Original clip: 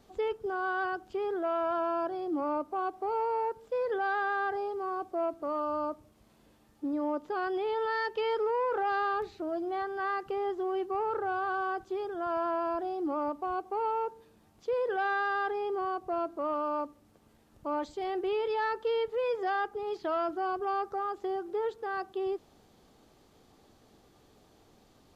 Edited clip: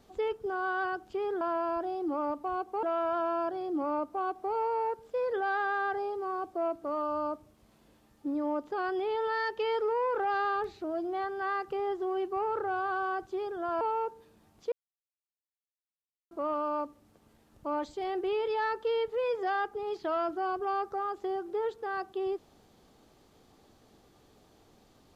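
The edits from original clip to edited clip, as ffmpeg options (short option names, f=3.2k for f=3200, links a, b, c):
-filter_complex "[0:a]asplit=6[a][b][c][d][e][f];[a]atrim=end=1.412[g];[b]atrim=start=12.388:end=13.812[h];[c]atrim=start=1.408:end=12.392[i];[d]atrim=start=13.808:end=14.72,asetpts=PTS-STARTPTS,afade=t=out:st=0.908:d=0.004:c=hsin[j];[e]atrim=start=14.72:end=16.31,asetpts=PTS-STARTPTS,volume=0[k];[f]atrim=start=16.31,asetpts=PTS-STARTPTS,afade=t=in:d=0.004:c=hsin[l];[g][h]acrossfade=d=0.004:c1=hsin:c2=hsin[m];[m][i]acrossfade=d=0.004:c1=hsin:c2=hsin[n];[j][k][l]concat=n=3:v=0:a=1[o];[n][o]acrossfade=d=0.004:c1=hsin:c2=hsin"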